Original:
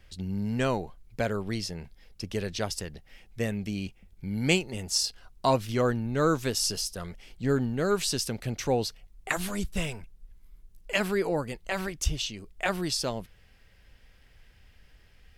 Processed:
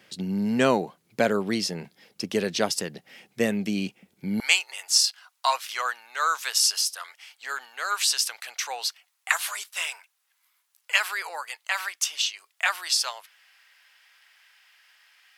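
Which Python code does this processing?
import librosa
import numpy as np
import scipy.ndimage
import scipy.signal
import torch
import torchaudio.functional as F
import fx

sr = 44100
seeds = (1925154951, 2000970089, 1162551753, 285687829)

y = fx.highpass(x, sr, hz=fx.steps((0.0, 170.0), (4.4, 960.0)), slope=24)
y = y * librosa.db_to_amplitude(7.0)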